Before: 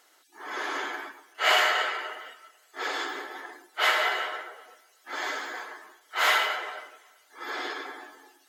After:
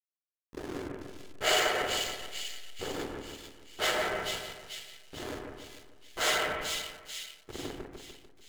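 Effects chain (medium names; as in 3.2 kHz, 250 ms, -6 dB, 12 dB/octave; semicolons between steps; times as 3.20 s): graphic EQ 125/250/500/1000/2000/8000 Hz +9/+6/+3/-11/-6/+10 dB; hysteresis with a dead band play -25 dBFS; two-band feedback delay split 2.4 kHz, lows 148 ms, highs 441 ms, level -4 dB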